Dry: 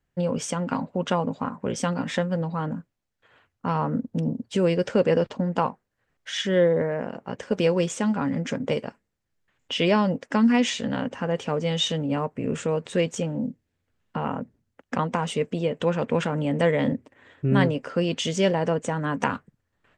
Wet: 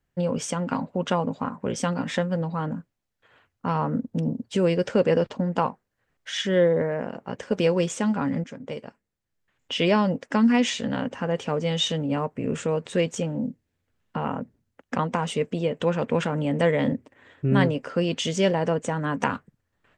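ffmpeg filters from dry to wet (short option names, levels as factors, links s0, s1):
-filter_complex "[0:a]asplit=2[s0][s1];[s0]atrim=end=8.44,asetpts=PTS-STARTPTS,afade=t=out:st=8.436:d=0.004:c=hsin:silence=0.223872[s2];[s1]atrim=start=8.44,asetpts=PTS-STARTPTS,afade=t=in:d=1.4:silence=0.223872[s3];[s2][s3]concat=n=2:v=0:a=1"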